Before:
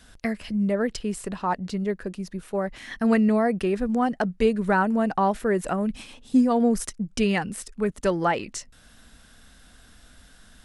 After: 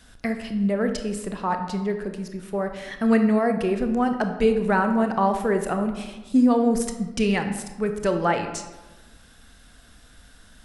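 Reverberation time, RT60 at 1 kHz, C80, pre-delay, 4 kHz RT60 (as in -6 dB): 1.2 s, 1.2 s, 10.0 dB, 25 ms, 0.70 s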